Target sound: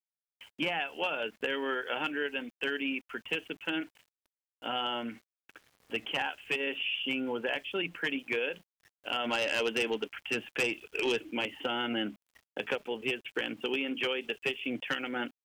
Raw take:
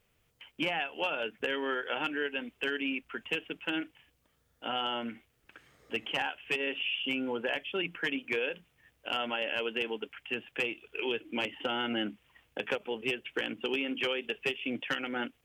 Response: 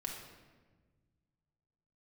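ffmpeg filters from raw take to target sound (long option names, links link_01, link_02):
-filter_complex "[0:a]asplit=3[link_01][link_02][link_03];[link_01]afade=type=out:start_time=9.24:duration=0.02[link_04];[link_02]aeval=exprs='0.1*(cos(1*acos(clip(val(0)/0.1,-1,1)))-cos(1*PI/2))+0.0251*(cos(5*acos(clip(val(0)/0.1,-1,1)))-cos(5*PI/2))+0.00794*(cos(7*acos(clip(val(0)/0.1,-1,1)))-cos(7*PI/2))':channel_layout=same,afade=type=in:start_time=9.24:duration=0.02,afade=type=out:start_time=11.29:duration=0.02[link_05];[link_03]afade=type=in:start_time=11.29:duration=0.02[link_06];[link_04][link_05][link_06]amix=inputs=3:normalize=0,aeval=exprs='val(0)*gte(abs(val(0)),0.00141)':channel_layout=same"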